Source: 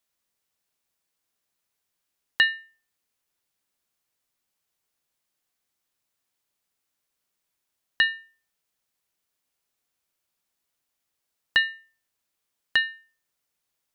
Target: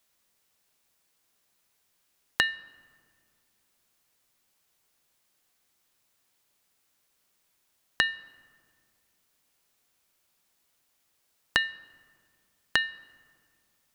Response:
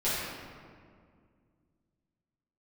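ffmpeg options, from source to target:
-filter_complex "[0:a]acompressor=threshold=-31dB:ratio=6,asplit=2[a][b];[1:a]atrim=start_sample=2205[c];[b][c]afir=irnorm=-1:irlink=0,volume=-29dB[d];[a][d]amix=inputs=2:normalize=0,volume=7.5dB"

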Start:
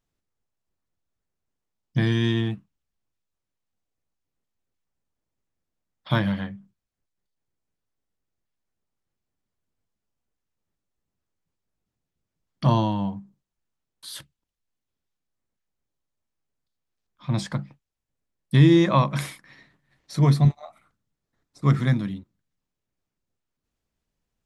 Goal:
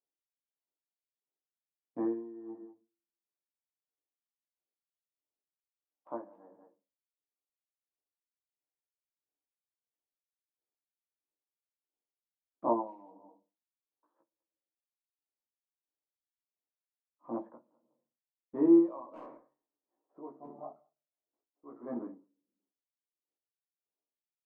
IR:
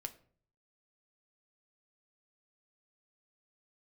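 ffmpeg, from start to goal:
-filter_complex "[0:a]asuperpass=centerf=540:order=8:qfactor=0.71,agate=range=-8dB:threshold=-55dB:ratio=16:detection=peak,asplit=2[a][b];[b]adelay=200,highpass=300,lowpass=3.4k,asoftclip=type=hard:threshold=-19.5dB,volume=-20dB[c];[a][c]amix=inputs=2:normalize=0,asplit=2[d][e];[1:a]atrim=start_sample=2205,asetrate=39249,aresample=44100,adelay=17[f];[e][f]afir=irnorm=-1:irlink=0,volume=1.5dB[g];[d][g]amix=inputs=2:normalize=0,aeval=exprs='val(0)*pow(10,-20*(0.5-0.5*cos(2*PI*1.5*n/s))/20)':c=same,volume=-4dB"

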